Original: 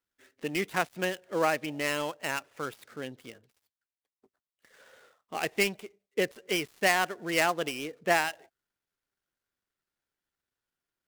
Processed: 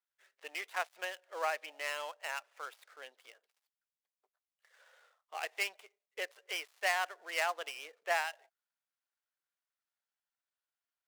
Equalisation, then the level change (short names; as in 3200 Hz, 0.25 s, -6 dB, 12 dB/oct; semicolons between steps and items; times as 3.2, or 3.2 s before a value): HPF 600 Hz 24 dB/oct; high shelf 7500 Hz -5 dB; -6.0 dB